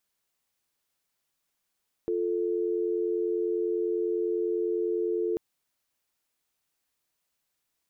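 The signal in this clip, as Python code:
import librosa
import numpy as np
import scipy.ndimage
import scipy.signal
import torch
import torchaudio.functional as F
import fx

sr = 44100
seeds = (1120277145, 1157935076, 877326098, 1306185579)

y = fx.call_progress(sr, length_s=3.29, kind='dial tone', level_db=-28.0)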